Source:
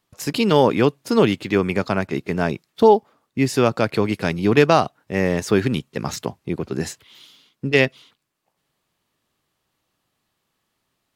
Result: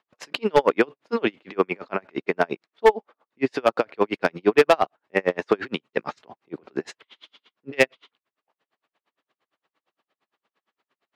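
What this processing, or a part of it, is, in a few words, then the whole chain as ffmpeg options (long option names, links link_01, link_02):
helicopter radio: -af "highpass=390,lowpass=2700,aeval=exprs='val(0)*pow(10,-38*(0.5-0.5*cos(2*PI*8.7*n/s))/20)':channel_layout=same,asoftclip=type=hard:threshold=-15.5dB,volume=7.5dB"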